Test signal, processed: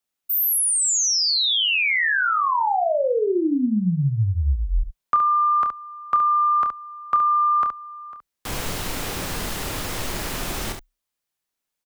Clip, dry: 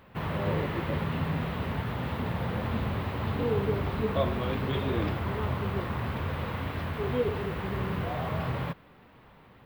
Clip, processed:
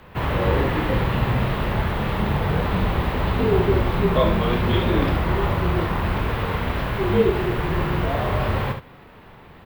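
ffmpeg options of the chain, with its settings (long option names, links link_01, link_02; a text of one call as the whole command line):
ffmpeg -i in.wav -af "afreqshift=-34,aecho=1:1:28|70:0.376|0.422,volume=8.5dB" out.wav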